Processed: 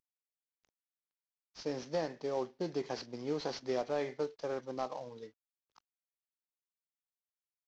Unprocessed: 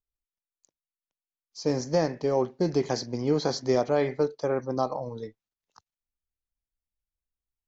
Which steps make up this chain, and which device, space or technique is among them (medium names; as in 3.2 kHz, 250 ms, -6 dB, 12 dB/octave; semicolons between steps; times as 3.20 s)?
early wireless headset (high-pass 290 Hz 6 dB/octave; CVSD coder 32 kbps); trim -8.5 dB